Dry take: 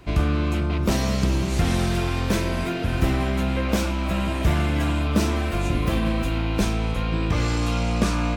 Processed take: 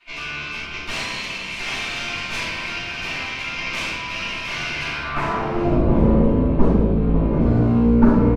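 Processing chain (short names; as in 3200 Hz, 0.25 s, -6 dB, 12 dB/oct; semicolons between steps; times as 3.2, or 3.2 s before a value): band-pass sweep 2700 Hz -> 250 Hz, 4.81–5.77; added harmonics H 6 -10 dB, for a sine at -13.5 dBFS; echo 0.78 s -18 dB; shoebox room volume 360 m³, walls mixed, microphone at 7.6 m; gain -6 dB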